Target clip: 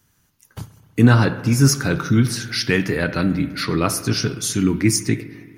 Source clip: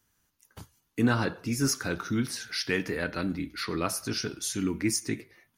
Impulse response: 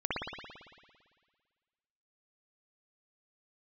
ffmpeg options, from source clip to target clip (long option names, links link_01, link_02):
-filter_complex "[0:a]equalizer=frequency=130:width_type=o:width=0.96:gain=9,asplit=2[link_01][link_02];[1:a]atrim=start_sample=2205,asetrate=38808,aresample=44100[link_03];[link_02][link_03]afir=irnorm=-1:irlink=0,volume=-22dB[link_04];[link_01][link_04]amix=inputs=2:normalize=0,volume=8dB"